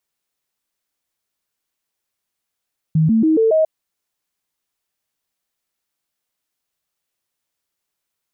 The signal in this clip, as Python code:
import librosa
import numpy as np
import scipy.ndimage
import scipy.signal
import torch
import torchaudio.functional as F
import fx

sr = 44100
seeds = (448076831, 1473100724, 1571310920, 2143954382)

y = fx.stepped_sweep(sr, from_hz=158.0, direction='up', per_octave=2, tones=5, dwell_s=0.14, gap_s=0.0, level_db=-11.0)